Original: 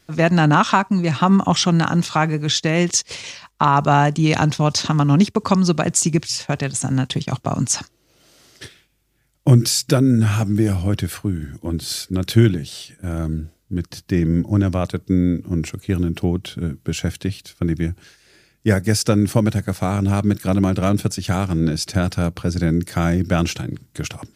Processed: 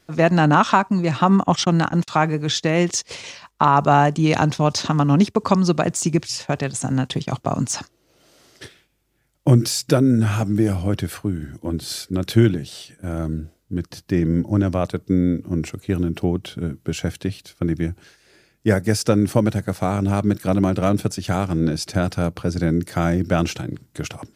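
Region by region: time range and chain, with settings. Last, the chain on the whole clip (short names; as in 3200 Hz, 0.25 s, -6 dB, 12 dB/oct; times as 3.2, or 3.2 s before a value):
1.43–2.08 gate -21 dBFS, range -50 dB + upward compressor, threshold -21 dBFS
whole clip: de-esser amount 30%; bell 580 Hz +5 dB 2.7 oct; gain -3.5 dB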